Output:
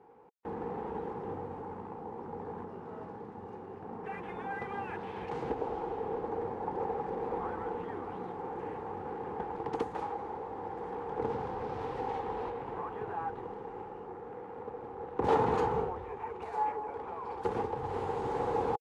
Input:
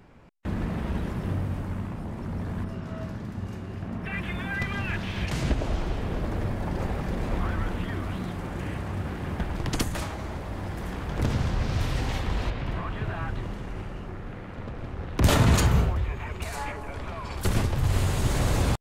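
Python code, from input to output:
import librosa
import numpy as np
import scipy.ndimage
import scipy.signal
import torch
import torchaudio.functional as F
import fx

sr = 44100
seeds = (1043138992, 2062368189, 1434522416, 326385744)

y = fx.cvsd(x, sr, bps=64000)
y = fx.double_bandpass(y, sr, hz=620.0, octaves=0.8)
y = F.gain(torch.from_numpy(y), 7.0).numpy()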